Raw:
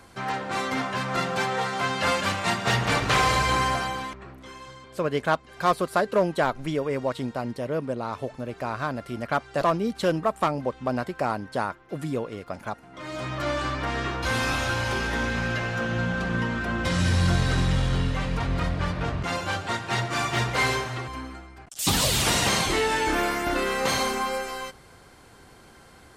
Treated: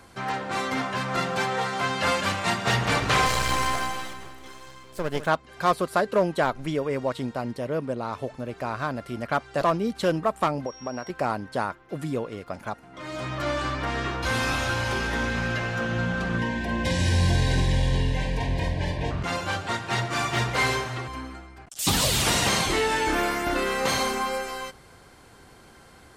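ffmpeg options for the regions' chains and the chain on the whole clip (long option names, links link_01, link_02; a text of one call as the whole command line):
ffmpeg -i in.wav -filter_complex "[0:a]asettb=1/sr,asplit=3[link_01][link_02][link_03];[link_01]atrim=end=3.264[link_04];[link_02]atrim=start=3.26:end=5.27,asetpts=PTS-STARTPTS,afade=type=in:duration=0.004:curve=qsin,afade=type=out:start_time=2.006:duration=0.004:curve=qsin,aeval=exprs='if(lt(val(0),0),0.251*val(0),val(0))':channel_layout=same,highshelf=frequency=5400:gain=7.5,aecho=1:1:156|312|468|624|780|936:0.251|0.141|0.0788|0.0441|0.0247|0.0138,atrim=end_sample=88641[link_05];[link_03]atrim=start=5.266[link_06];[link_04][link_05]acrossfade=duration=0.004:curve1=hsin:curve2=qsin[link_07];[link_07][link_06]acrossfade=duration=0.004:curve1=qsin:curve2=hsin,asettb=1/sr,asplit=3[link_08][link_09][link_10];[link_08]atrim=end=10.664[link_11];[link_09]atrim=start=10.66:end=11.1,asetpts=PTS-STARTPTS,afade=type=in:duration=0.004:curve=qsin,afade=type=out:start_time=0.436:duration=0.004:curve=qsin,bass=frequency=250:gain=-7,treble=frequency=4000:gain=-8,acompressor=threshold=-30dB:ratio=2:attack=3.2:release=140:knee=1:detection=peak,aeval=exprs='val(0)+0.00562*sin(2*PI*5600*n/s)':channel_layout=same[link_12];[link_10]atrim=start=11.096[link_13];[link_11][link_12]acrossfade=duration=0.004:curve1=hsin:curve2=qsin[link_14];[link_14][link_13]acrossfade=duration=0.004:curve1=qsin:curve2=hsin,asettb=1/sr,asplit=3[link_15][link_16][link_17];[link_15]atrim=end=16.384[link_18];[link_16]atrim=start=16.38:end=19.11,asetpts=PTS-STARTPTS,afade=type=in:duration=0.004:curve=qsin,afade=type=out:start_time=2.726:duration=0.004:curve=qsin,asuperstop=centerf=1300:order=20:qfactor=2.8,asplit=2[link_19][link_20];[link_20]adelay=48,volume=-8dB[link_21];[link_19][link_21]amix=inputs=2:normalize=0,atrim=end_sample=120393[link_22];[link_17]atrim=start=19.106[link_23];[link_18][link_22]acrossfade=duration=0.004:curve1=hsin:curve2=qsin[link_24];[link_24][link_23]acrossfade=duration=0.004:curve1=qsin:curve2=hsin" out.wav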